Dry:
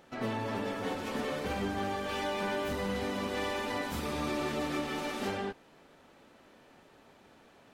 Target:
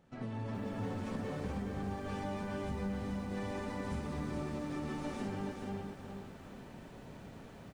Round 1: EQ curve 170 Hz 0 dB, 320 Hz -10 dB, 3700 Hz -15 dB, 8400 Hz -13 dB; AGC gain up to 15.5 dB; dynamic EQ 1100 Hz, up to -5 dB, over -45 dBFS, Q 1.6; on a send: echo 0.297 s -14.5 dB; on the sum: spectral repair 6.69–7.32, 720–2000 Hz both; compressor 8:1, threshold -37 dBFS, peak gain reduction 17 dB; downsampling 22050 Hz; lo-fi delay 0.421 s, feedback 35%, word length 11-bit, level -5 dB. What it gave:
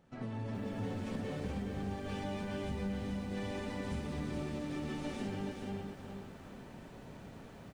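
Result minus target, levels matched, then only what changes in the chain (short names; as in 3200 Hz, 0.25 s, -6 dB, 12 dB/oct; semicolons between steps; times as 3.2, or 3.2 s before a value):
4000 Hz band +3.0 dB
change: dynamic EQ 3100 Hz, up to -5 dB, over -45 dBFS, Q 1.6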